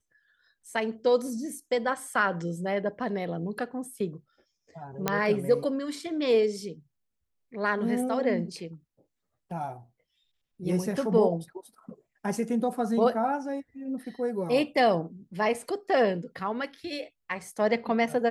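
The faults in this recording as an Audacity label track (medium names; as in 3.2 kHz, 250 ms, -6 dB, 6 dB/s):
5.080000	5.080000	pop -9 dBFS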